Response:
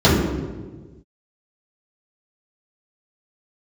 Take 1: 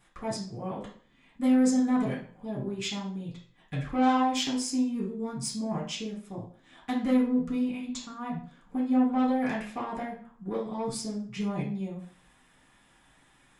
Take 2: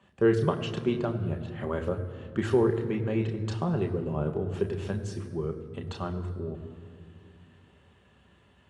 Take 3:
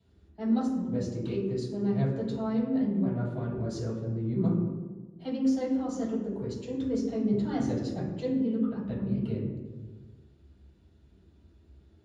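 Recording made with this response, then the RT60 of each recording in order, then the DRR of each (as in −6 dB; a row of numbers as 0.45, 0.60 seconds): 3; 0.45, 2.5, 1.4 seconds; −9.0, 4.0, −11.5 decibels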